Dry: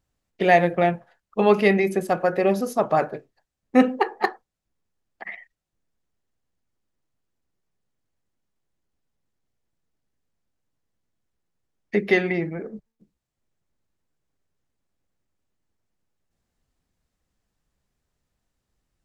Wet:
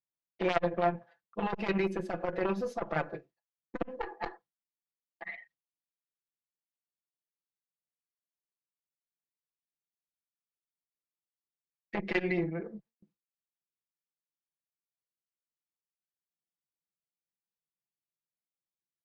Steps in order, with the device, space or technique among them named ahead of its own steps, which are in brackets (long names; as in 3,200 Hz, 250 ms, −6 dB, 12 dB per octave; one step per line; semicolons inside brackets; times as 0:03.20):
valve radio (band-pass filter 120–4,500 Hz; tube saturation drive 10 dB, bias 0.75; saturating transformer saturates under 950 Hz)
comb filter 5.9 ms, depth 73%
noise gate with hold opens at −52 dBFS
level −3.5 dB